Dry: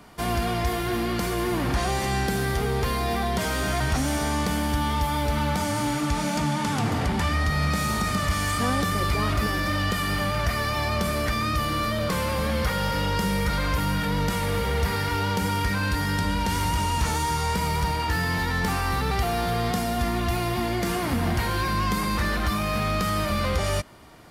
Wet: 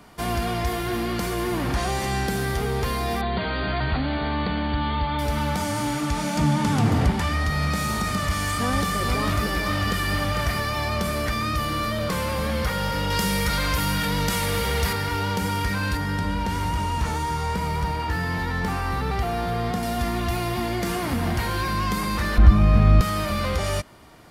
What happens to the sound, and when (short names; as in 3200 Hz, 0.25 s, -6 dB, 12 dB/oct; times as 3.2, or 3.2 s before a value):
3.21–5.19 brick-wall FIR low-pass 4700 Hz
6.38–7.11 low shelf 400 Hz +7 dB
8.27–10.6 echo 0.449 s -5.5 dB
13.1–14.93 high shelf 2200 Hz +7.5 dB
15.97–19.83 high shelf 3100 Hz -8 dB
22.38–23.01 RIAA curve playback